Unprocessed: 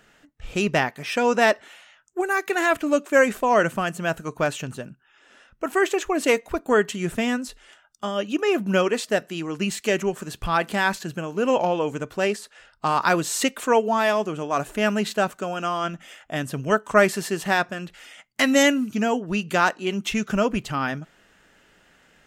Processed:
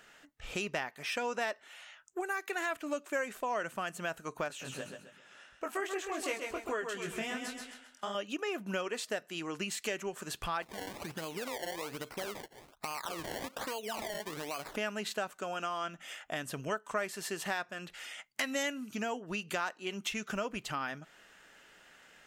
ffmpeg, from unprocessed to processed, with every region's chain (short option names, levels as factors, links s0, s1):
-filter_complex "[0:a]asettb=1/sr,asplit=3[s0][s1][s2];[s0]atrim=end=4.484[s3];[s1]atrim=start=4.48:end=8.15,asetpts=PTS-STARTPTS,afade=t=in:d=0.004:c=qsin,afade=t=out:st=3.666:d=0.004:c=qsin,flanger=delay=18.5:depth=5:speed=2.7,aecho=1:1:132|264|396|528:0.447|0.156|0.0547|0.0192,atrim=end_sample=161847[s4];[s2]atrim=start=8.146[s5];[s3][s4]acrossfade=d=0.004:c1=hsin:c2=qsin[s6];[s6][s5]acrossfade=d=0.004:c1=qsin:c2=hsin,asettb=1/sr,asplit=3[s7][s8][s9];[s7]atrim=end=10.624[s10];[s8]atrim=start=10.62:end=14.76,asetpts=PTS-STARTPTS,afade=t=in:d=0.004:c=qsin,afade=t=out:st=4.136:d=0.004:c=qsin,acompressor=threshold=0.0355:ratio=5:attack=3.2:release=140:knee=1:detection=peak,acrusher=samples=24:mix=1:aa=0.000001:lfo=1:lforange=24:lforate=1.2[s11];[s9]atrim=start=14.756[s12];[s10][s11]acrossfade=d=0.004:c1=hsin:c2=qsin[s13];[s13][s12]acrossfade=d=0.004:c1=qsin:c2=hsin,lowshelf=f=350:g=-11.5,acompressor=threshold=0.0158:ratio=3"